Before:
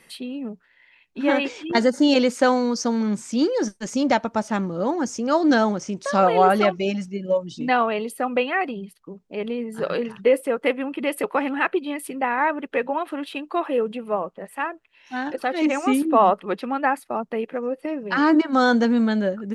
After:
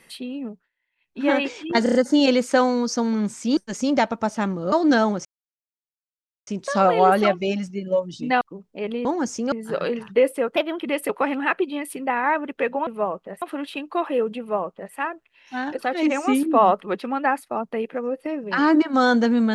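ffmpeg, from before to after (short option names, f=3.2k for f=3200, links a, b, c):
-filter_complex "[0:a]asplit=17[a][b][c][d][e][f][g][h][i][j][k][l][m][n][o][p][q];[a]atrim=end=0.71,asetpts=PTS-STARTPTS,afade=t=out:st=0.44:d=0.27:silence=0.0749894[r];[b]atrim=start=0.71:end=0.96,asetpts=PTS-STARTPTS,volume=-22.5dB[s];[c]atrim=start=0.96:end=1.862,asetpts=PTS-STARTPTS,afade=t=in:d=0.27:silence=0.0749894[t];[d]atrim=start=1.828:end=1.862[u];[e]atrim=start=1.828:end=1.862[v];[f]atrim=start=1.828:end=1.862[w];[g]atrim=start=1.828:end=3.452[x];[h]atrim=start=3.698:end=4.852[y];[i]atrim=start=5.318:end=5.85,asetpts=PTS-STARTPTS,afade=t=out:st=0.528:d=0.004:c=hsin,apad=pad_dur=1.22[z];[j]atrim=start=5.85:end=7.792,asetpts=PTS-STARTPTS,afade=t=in:d=0.004:c=hsin[aa];[k]atrim=start=8.968:end=9.612[ab];[l]atrim=start=4.848:end=5.322[ac];[m]atrim=start=9.608:end=10.654[ad];[n]atrim=start=10.65:end=10.95,asetpts=PTS-STARTPTS,asetrate=53361,aresample=44100[ae];[o]atrim=start=10.946:end=13.012[af];[p]atrim=start=13.978:end=14.532[ag];[q]atrim=start=13.008[ah];[r][s][t]concat=n=3:v=0:a=1[ai];[ai][u]acrossfade=d=0.004:c1=hsin:c2=hsin[aj];[aj][v]acrossfade=d=0.004:c1=hsin:c2=hsin[ak];[ak][w]acrossfade=d=0.004:c1=hsin:c2=hsin[al];[al][x]acrossfade=d=0.004:c1=hsin:c2=hsin[am];[am][y]acrossfade=d=0.004:c1=hsin:c2=hsin[an];[z][aa]concat=n=2:v=0:a=1[ao];[an][ao]acrossfade=d=0.004:c1=hsin:c2=hsin[ap];[ap][ab]acrossfade=d=0.004:c1=hsin:c2=hsin[aq];[aq][ac]acrossfade=d=0.004:c1=hsin:c2=hsin[ar];[ar][ad]acrossfade=d=0.004:c1=hsin:c2=hsin[as];[as][ae]acrossfade=d=0.004:c1=hsin:c2=hsin[at];[at][af]acrossfade=d=0.004:c1=hsin:c2=hsin[au];[au][ag]acrossfade=d=0.004:c1=hsin:c2=hsin[av];[av][ah]acrossfade=d=0.004:c1=hsin:c2=hsin"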